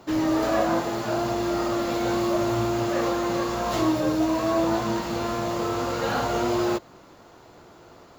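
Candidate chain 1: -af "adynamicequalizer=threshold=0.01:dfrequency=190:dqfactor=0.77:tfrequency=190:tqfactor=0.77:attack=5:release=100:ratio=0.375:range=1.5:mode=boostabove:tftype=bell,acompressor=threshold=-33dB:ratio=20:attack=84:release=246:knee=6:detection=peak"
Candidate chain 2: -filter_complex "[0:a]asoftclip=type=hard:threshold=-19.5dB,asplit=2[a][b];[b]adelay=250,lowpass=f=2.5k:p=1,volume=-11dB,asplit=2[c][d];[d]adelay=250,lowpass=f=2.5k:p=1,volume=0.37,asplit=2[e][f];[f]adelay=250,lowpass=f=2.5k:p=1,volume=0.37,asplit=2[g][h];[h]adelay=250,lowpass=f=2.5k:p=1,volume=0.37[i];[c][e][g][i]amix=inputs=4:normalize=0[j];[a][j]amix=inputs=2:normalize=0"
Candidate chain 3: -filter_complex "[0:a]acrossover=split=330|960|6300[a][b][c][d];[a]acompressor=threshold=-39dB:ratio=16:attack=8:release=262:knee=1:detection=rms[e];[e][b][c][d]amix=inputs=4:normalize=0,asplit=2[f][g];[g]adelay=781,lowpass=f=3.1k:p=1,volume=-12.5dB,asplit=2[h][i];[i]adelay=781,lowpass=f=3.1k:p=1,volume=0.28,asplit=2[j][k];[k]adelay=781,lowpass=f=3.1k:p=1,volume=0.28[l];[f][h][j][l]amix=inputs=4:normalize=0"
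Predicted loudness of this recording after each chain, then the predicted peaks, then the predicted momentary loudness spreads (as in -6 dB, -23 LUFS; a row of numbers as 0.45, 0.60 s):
-34.0, -25.5, -27.0 LUFS; -20.0, -16.5, -12.5 dBFS; 16, 4, 14 LU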